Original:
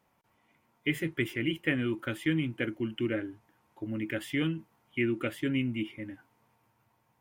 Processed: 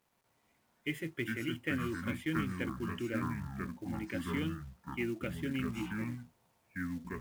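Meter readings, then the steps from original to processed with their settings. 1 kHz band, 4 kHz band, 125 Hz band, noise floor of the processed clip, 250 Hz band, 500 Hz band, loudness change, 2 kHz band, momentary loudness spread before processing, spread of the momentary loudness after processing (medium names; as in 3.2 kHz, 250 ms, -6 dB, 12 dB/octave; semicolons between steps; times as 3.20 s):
+4.5 dB, -6.5 dB, -3.0 dB, -75 dBFS, -4.5 dB, -6.5 dB, -5.5 dB, -5.0 dB, 10 LU, 7 LU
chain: ever faster or slower copies 119 ms, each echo -5 st, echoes 2; companded quantiser 6-bit; trim -7 dB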